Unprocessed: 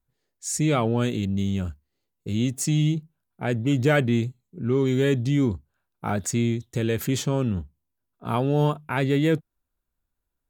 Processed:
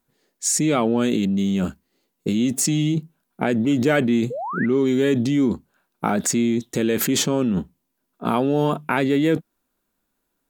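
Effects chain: resonant low shelf 140 Hz -14 dB, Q 1.5; in parallel at +1.5 dB: negative-ratio compressor -31 dBFS, ratio -1; on the sum: painted sound rise, 4.3–4.66, 440–2100 Hz -28 dBFS

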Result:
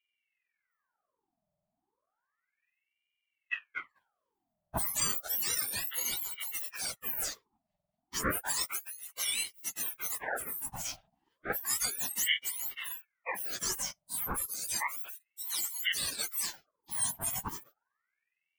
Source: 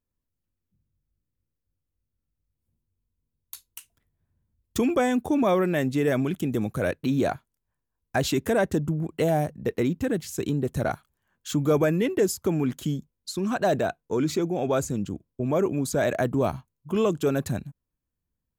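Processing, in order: spectrum mirrored in octaves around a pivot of 2000 Hz; dynamic EQ 2500 Hz, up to -5 dB, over -49 dBFS, Q 1; ring modulator with a swept carrier 1500 Hz, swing 75%, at 0.32 Hz

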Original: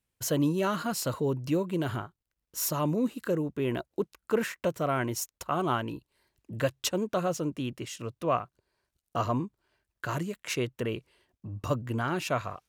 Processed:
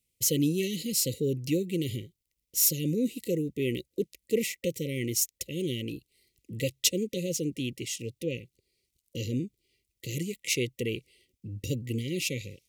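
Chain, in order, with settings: brick-wall FIR band-stop 550–1900 Hz; high shelf 2900 Hz +8.5 dB

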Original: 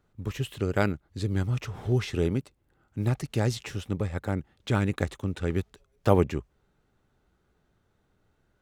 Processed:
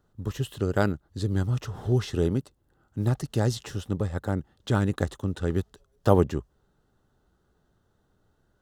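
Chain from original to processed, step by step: bell 2300 Hz -14.5 dB 0.34 oct; gain +1.5 dB

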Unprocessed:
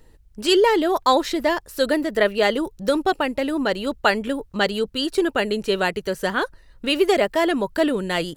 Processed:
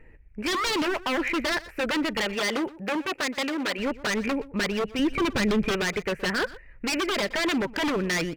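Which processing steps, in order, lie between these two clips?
EQ curve 590 Hz 0 dB, 1100 Hz -4 dB, 2400 Hz +13 dB, 3500 Hz -22 dB; limiter -12 dBFS, peak gain reduction 11.5 dB; wavefolder -20.5 dBFS; 2.34–3.78 HPF 170 Hz -> 500 Hz 6 dB/oct; 4.99–5.71 tone controls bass +10 dB, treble -1 dB; echo 0.121 s -19 dB

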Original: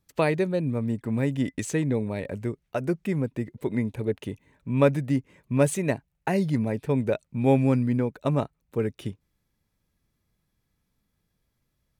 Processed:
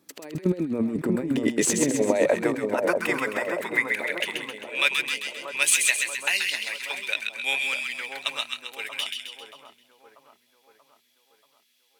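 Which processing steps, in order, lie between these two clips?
high-pass sweep 290 Hz -> 2900 Hz, 1.08–4.63; negative-ratio compressor -30 dBFS, ratio -0.5; split-band echo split 1200 Hz, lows 0.634 s, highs 0.132 s, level -4 dB; gain +7 dB

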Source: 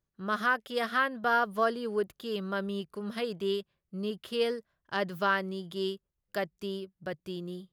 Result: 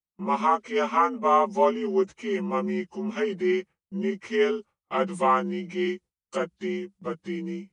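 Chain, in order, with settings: inharmonic rescaling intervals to 84%; gate with hold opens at -51 dBFS; gain +7 dB

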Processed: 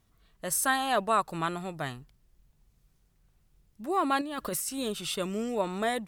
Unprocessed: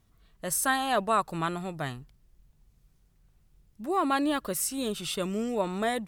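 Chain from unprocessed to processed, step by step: low shelf 270 Hz -3.5 dB; 4.21–4.69 negative-ratio compressor -34 dBFS, ratio -1

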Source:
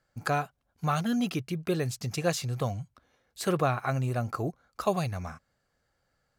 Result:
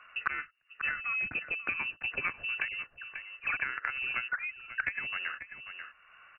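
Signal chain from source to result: 4.28–4.8 sine-wave speech; band shelf 1200 Hz +9 dB 1 oct; compressor 8:1, threshold -27 dBFS, peak gain reduction 10.5 dB; added harmonics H 3 -12 dB, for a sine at -13.5 dBFS; 0.87–1.5 notch comb 600 Hz; 2.68–3.57 dispersion highs, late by 72 ms, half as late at 800 Hz; on a send: echo 0.539 s -18 dB; on the sum: inverted band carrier 2800 Hz; three-band squash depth 70%; gain +7 dB

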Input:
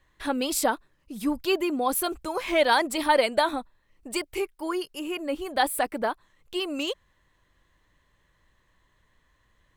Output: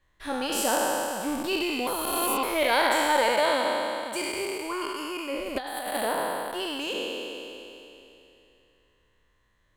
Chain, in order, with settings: spectral trails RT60 2.97 s; 1.87–2.43 reverse; 3.32–4.66 HPF 61 Hz; 5.55–5.95 negative-ratio compressor -24 dBFS, ratio -0.5; gain -6.5 dB

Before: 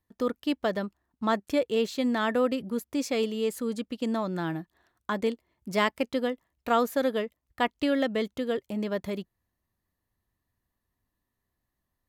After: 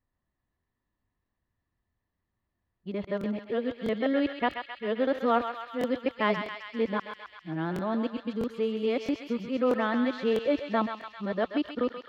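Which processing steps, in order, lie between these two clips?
whole clip reversed; air absorption 270 m; thinning echo 0.132 s, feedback 81%, high-pass 1100 Hz, level -5 dB; crackling interface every 0.65 s, samples 1024, repeat, from 0.59

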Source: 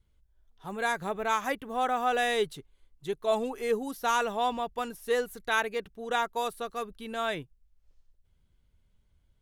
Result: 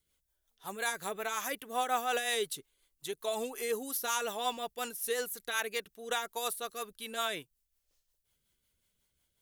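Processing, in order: RIAA curve recording; limiter -18 dBFS, peak gain reduction 7.5 dB; rotary speaker horn 5.5 Hz

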